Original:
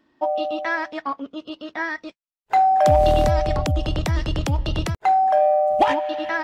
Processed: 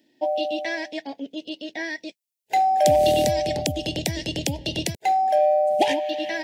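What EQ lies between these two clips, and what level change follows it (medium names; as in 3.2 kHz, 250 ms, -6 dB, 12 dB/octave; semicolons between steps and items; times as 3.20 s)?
high-pass 160 Hz 12 dB/octave; Butterworth band-stop 1.2 kHz, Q 1; treble shelf 4.1 kHz +11 dB; 0.0 dB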